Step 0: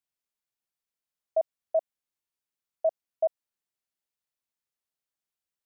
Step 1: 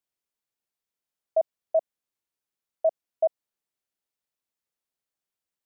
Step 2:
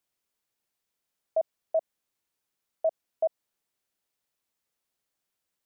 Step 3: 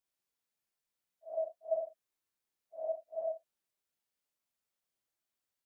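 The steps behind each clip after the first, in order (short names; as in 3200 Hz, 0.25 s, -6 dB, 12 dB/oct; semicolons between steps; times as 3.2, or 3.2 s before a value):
bell 420 Hz +3.5 dB 2 oct
limiter -25 dBFS, peak gain reduction 9.5 dB; gain +5.5 dB
phase scrambler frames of 0.2 s; gain -6 dB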